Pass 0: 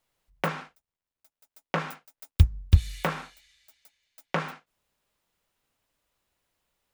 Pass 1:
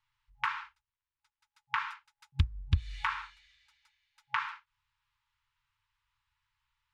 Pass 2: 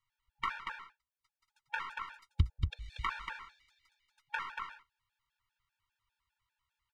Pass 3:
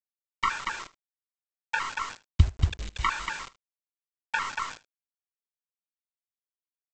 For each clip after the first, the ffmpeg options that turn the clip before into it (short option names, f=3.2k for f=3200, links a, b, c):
-af "afftfilt=real='re*(1-between(b*sr/4096,130,830))':imag='im*(1-between(b*sr/4096,130,830))':win_size=4096:overlap=0.75,lowpass=3.6k,acompressor=threshold=-23dB:ratio=6"
-af "aeval=exprs='if(lt(val(0),0),0.708*val(0),val(0))':c=same,aecho=1:1:234:0.562,afftfilt=real='re*gt(sin(2*PI*5*pts/sr)*(1-2*mod(floor(b*sr/1024/460),2)),0)':imag='im*gt(sin(2*PI*5*pts/sr)*(1-2*mod(floor(b*sr/1024/460),2)),0)':win_size=1024:overlap=0.75"
-af "aresample=16000,acrusher=bits=7:mix=0:aa=0.000001,aresample=44100,aecho=1:1:76:0.1,volume=9dB"